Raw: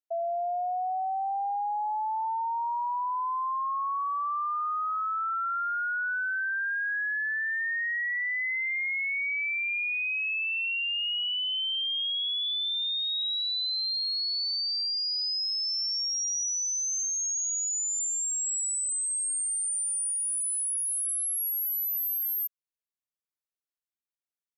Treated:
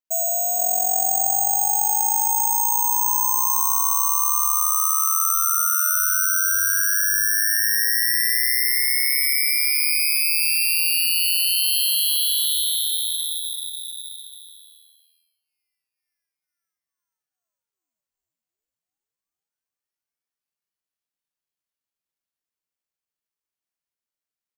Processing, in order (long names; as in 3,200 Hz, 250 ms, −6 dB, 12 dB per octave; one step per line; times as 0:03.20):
0:03.71–0:04.15: noise in a band 690–1,300 Hz −50 dBFS
on a send: bouncing-ball delay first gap 470 ms, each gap 0.75×, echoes 5
on the sum: bad sample-rate conversion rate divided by 6×, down filtered, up zero stuff